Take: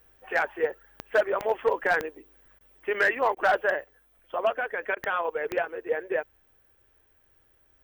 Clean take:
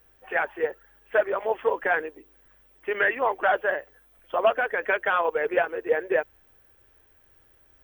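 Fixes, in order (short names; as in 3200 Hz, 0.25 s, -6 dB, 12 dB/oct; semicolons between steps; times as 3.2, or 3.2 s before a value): clip repair -15 dBFS; de-click; interpolate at 2.59/3.35/4.95, 15 ms; gain 0 dB, from 3.84 s +4.5 dB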